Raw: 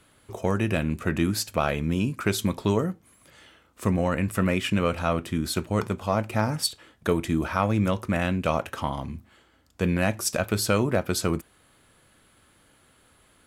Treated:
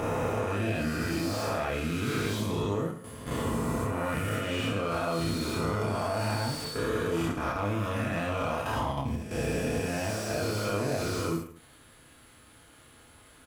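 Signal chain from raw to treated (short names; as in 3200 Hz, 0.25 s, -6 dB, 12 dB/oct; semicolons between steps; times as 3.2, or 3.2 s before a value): spectral swells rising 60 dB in 1.73 s; 7.31–7.73 gate with hold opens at -10 dBFS; compressor 3:1, threshold -41 dBFS, peak gain reduction 18.5 dB; sample leveller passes 1; level quantiser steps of 13 dB; notch comb 190 Hz; on a send: reverse bouncing-ball echo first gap 30 ms, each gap 1.2×, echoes 5; on the sum: slew limiter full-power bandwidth 25 Hz; gain +8.5 dB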